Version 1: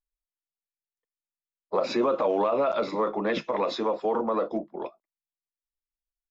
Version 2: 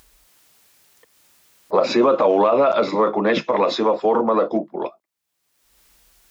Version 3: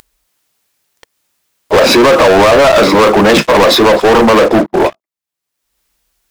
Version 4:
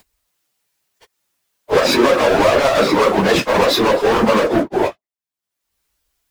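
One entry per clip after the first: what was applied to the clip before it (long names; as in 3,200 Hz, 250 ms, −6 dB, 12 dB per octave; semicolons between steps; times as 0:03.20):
high-pass filter 47 Hz; upward compression, threshold −40 dBFS; level +8.5 dB
leveller curve on the samples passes 5; level +2.5 dB
random phases in long frames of 50 ms; level −7 dB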